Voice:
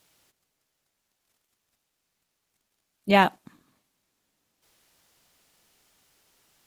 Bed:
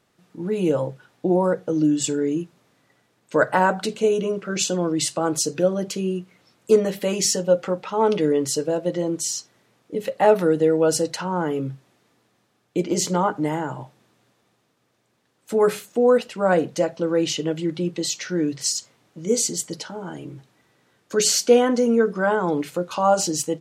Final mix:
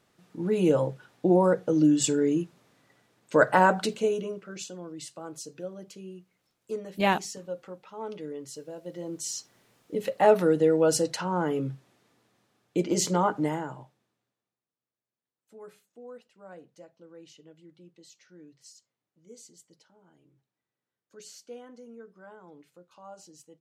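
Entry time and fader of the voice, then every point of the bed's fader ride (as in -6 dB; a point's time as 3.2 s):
3.90 s, -5.5 dB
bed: 3.79 s -1.5 dB
4.73 s -18 dB
8.76 s -18 dB
9.53 s -3.5 dB
13.44 s -3.5 dB
14.62 s -28.5 dB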